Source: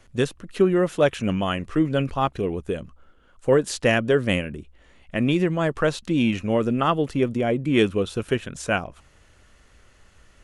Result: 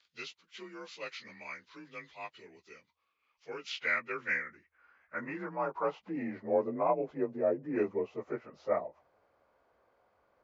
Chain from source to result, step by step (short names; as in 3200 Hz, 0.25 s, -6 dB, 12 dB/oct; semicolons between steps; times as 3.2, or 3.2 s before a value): inharmonic rescaling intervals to 89%; band-pass sweep 3600 Hz -> 650 Hz, 3–6.4